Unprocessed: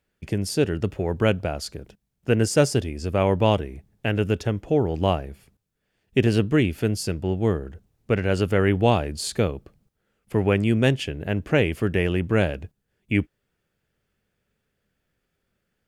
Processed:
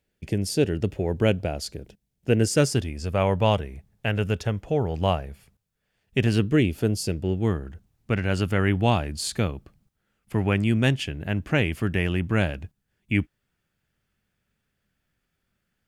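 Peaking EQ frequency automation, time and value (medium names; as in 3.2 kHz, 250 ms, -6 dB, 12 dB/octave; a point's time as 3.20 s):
peaking EQ -7.5 dB 0.88 oct
2.38 s 1.2 kHz
3.02 s 320 Hz
6.20 s 320 Hz
6.83 s 2.3 kHz
7.55 s 460 Hz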